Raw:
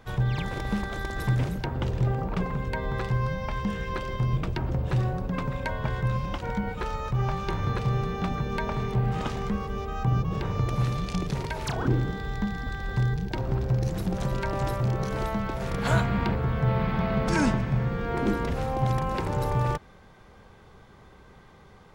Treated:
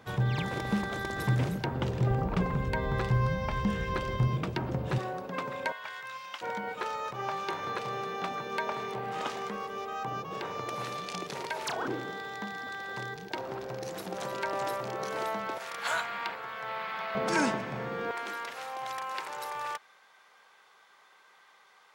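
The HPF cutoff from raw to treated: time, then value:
120 Hz
from 2.11 s 46 Hz
from 4.28 s 150 Hz
from 4.98 s 370 Hz
from 5.72 s 1400 Hz
from 6.41 s 440 Hz
from 15.58 s 1000 Hz
from 17.15 s 340 Hz
from 18.11 s 1100 Hz

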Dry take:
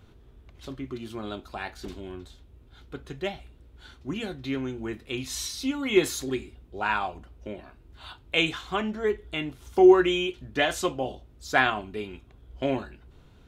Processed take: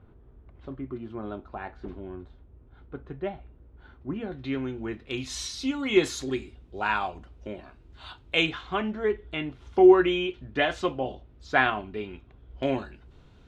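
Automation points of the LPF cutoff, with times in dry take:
1400 Hz
from 4.32 s 3400 Hz
from 5.11 s 6900 Hz
from 8.46 s 3300 Hz
from 12.63 s 7100 Hz

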